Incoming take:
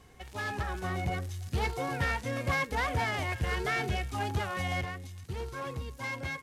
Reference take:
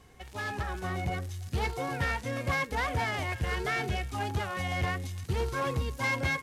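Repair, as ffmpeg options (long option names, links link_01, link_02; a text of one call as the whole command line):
ffmpeg -i in.wav -af "asetnsamples=nb_out_samples=441:pad=0,asendcmd='4.81 volume volume 7dB',volume=0dB" out.wav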